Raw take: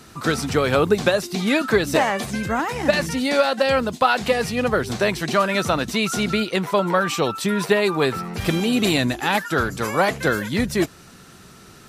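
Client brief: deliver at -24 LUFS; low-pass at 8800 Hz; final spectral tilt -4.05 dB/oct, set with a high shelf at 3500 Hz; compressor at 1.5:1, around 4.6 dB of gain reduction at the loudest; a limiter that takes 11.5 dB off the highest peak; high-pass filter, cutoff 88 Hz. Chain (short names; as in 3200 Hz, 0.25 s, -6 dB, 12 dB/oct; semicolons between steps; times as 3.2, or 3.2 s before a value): HPF 88 Hz; LPF 8800 Hz; high shelf 3500 Hz +3.5 dB; compressor 1.5:1, threshold -25 dBFS; gain +4 dB; limiter -14.5 dBFS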